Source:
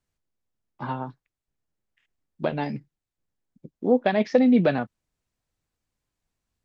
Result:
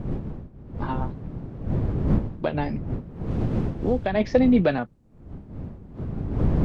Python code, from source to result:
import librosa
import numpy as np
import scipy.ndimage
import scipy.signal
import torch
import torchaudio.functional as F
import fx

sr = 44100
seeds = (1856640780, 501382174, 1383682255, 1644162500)

y = fx.dmg_wind(x, sr, seeds[0], corner_hz=180.0, level_db=-28.0)
y = fx.band_squash(y, sr, depth_pct=70, at=(2.54, 4.15))